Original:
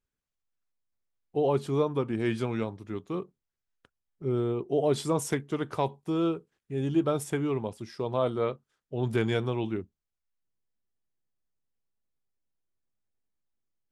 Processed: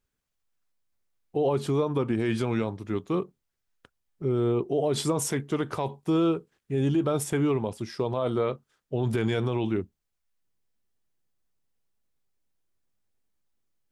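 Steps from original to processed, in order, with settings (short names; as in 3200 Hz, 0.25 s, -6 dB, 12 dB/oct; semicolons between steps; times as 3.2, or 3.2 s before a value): limiter -23 dBFS, peak gain reduction 9 dB; gain +6 dB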